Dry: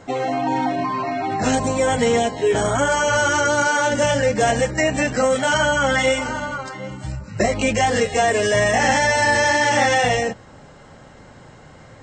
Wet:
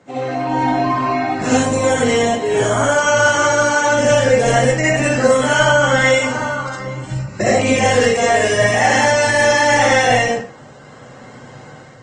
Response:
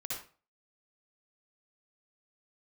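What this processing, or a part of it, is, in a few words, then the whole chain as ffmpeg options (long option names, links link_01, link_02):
far-field microphone of a smart speaker: -filter_complex "[1:a]atrim=start_sample=2205[link_01];[0:a][link_01]afir=irnorm=-1:irlink=0,highpass=frequency=110:width=0.5412,highpass=frequency=110:width=1.3066,dynaudnorm=framelen=470:gausssize=3:maxgain=6.5dB" -ar 48000 -c:a libopus -b:a 20k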